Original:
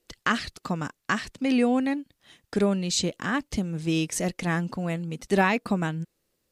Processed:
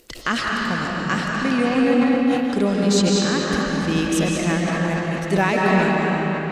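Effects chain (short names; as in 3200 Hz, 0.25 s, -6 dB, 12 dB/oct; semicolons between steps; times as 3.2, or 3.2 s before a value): gate with hold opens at -45 dBFS; upward compressor, threshold -31 dBFS; reverb RT60 4.2 s, pre-delay 0.11 s, DRR -4.5 dB; sustainer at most 51 dB/s; gain +1 dB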